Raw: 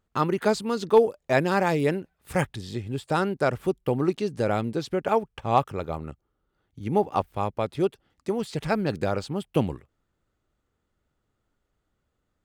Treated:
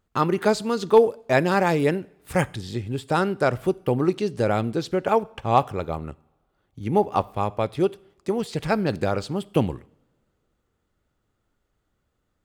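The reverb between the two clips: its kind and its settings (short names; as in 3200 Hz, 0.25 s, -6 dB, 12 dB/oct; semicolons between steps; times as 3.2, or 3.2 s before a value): two-slope reverb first 0.58 s, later 2.4 s, from -25 dB, DRR 19 dB; gain +2.5 dB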